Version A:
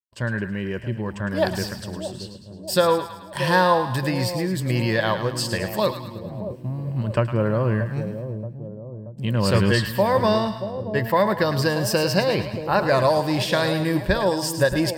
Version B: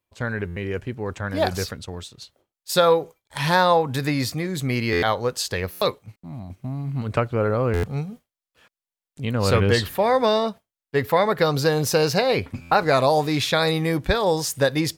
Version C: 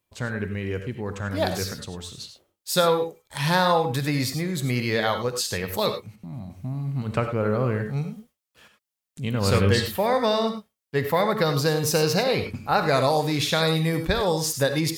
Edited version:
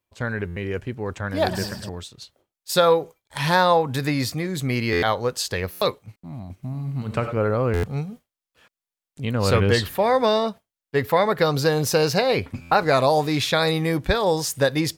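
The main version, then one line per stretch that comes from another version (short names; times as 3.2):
B
1.49–1.89 from A
6.63–7.37 from C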